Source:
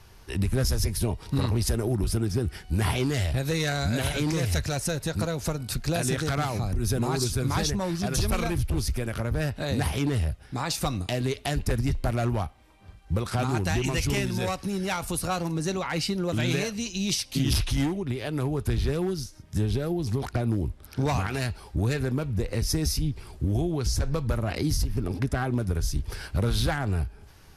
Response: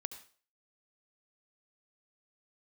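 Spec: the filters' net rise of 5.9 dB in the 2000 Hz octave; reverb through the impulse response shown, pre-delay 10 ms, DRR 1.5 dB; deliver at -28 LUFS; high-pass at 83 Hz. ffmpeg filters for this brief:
-filter_complex "[0:a]highpass=83,equalizer=f=2k:t=o:g=7.5,asplit=2[a][b];[1:a]atrim=start_sample=2205,adelay=10[c];[b][c]afir=irnorm=-1:irlink=0,volume=0.5dB[d];[a][d]amix=inputs=2:normalize=0,volume=-3dB"

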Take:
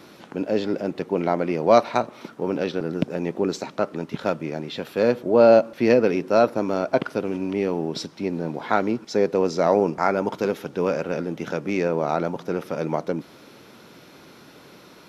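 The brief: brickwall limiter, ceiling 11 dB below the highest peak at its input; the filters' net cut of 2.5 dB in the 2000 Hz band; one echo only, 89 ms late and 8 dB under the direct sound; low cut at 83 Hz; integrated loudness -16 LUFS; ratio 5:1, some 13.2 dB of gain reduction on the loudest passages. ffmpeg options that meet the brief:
-af "highpass=83,equalizer=f=2k:t=o:g=-3.5,acompressor=threshold=-25dB:ratio=5,alimiter=limit=-21.5dB:level=0:latency=1,aecho=1:1:89:0.398,volume=16.5dB"

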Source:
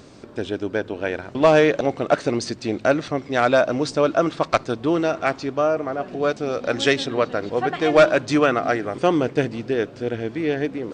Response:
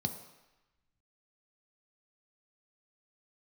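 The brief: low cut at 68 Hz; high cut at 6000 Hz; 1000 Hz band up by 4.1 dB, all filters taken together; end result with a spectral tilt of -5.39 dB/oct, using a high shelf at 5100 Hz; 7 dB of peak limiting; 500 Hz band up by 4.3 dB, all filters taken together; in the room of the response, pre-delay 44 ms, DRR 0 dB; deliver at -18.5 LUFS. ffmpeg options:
-filter_complex "[0:a]highpass=68,lowpass=6k,equalizer=f=500:t=o:g=4,equalizer=f=1k:t=o:g=4,highshelf=f=5.1k:g=9,alimiter=limit=-7dB:level=0:latency=1,asplit=2[a][b];[1:a]atrim=start_sample=2205,adelay=44[c];[b][c]afir=irnorm=-1:irlink=0,volume=-2dB[d];[a][d]amix=inputs=2:normalize=0,volume=-3.5dB"

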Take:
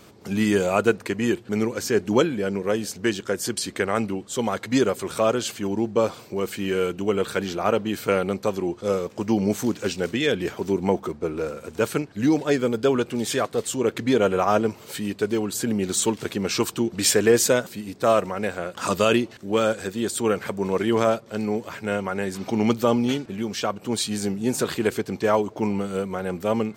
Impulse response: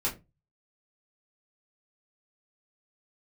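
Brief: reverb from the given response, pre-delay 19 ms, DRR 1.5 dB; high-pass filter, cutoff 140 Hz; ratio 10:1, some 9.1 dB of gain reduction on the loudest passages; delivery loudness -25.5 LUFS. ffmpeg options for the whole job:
-filter_complex "[0:a]highpass=140,acompressor=threshold=-22dB:ratio=10,asplit=2[a][b];[1:a]atrim=start_sample=2205,adelay=19[c];[b][c]afir=irnorm=-1:irlink=0,volume=-8dB[d];[a][d]amix=inputs=2:normalize=0"

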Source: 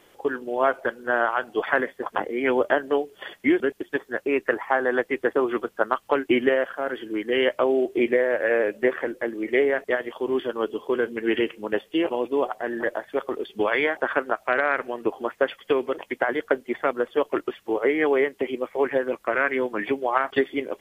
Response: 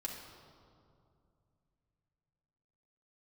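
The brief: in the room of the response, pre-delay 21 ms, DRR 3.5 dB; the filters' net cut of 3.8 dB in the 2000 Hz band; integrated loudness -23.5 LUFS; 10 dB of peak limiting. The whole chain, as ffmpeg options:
-filter_complex "[0:a]equalizer=f=2k:t=o:g=-5,alimiter=limit=-16dB:level=0:latency=1,asplit=2[a][b];[1:a]atrim=start_sample=2205,adelay=21[c];[b][c]afir=irnorm=-1:irlink=0,volume=-3dB[d];[a][d]amix=inputs=2:normalize=0,volume=2.5dB"

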